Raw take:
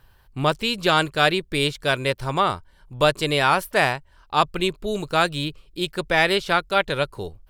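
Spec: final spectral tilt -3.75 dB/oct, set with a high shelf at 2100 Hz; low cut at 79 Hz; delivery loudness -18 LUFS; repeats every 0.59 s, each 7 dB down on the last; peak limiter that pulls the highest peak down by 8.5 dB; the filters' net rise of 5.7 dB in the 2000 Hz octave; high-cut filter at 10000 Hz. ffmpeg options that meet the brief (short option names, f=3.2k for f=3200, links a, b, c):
-af "highpass=79,lowpass=10k,equalizer=f=2k:t=o:g=5.5,highshelf=f=2.1k:g=3.5,alimiter=limit=-6.5dB:level=0:latency=1,aecho=1:1:590|1180|1770|2360|2950:0.447|0.201|0.0905|0.0407|0.0183,volume=2.5dB"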